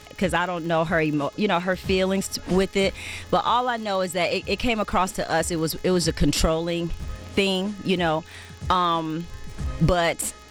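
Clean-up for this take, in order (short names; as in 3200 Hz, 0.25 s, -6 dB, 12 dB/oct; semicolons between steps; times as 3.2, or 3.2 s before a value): de-click; de-hum 423.4 Hz, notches 17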